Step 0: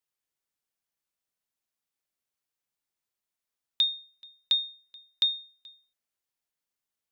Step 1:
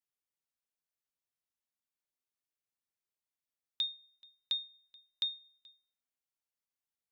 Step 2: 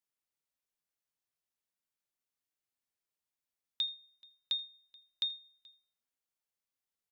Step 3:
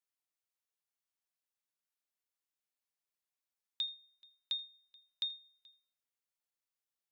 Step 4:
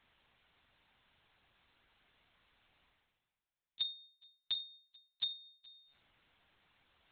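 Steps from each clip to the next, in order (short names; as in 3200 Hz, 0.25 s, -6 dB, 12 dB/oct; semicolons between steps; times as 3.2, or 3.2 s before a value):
on a send at -16.5 dB: low shelf 170 Hz +11 dB + reverb RT60 0.60 s, pre-delay 3 ms; on the sum: gain -8.5 dB
echo 81 ms -23.5 dB
low shelf 320 Hz -9 dB; gain -3 dB
monotone LPC vocoder at 8 kHz 140 Hz; reverse; upward compressor, threshold -55 dBFS; reverse; gain +2.5 dB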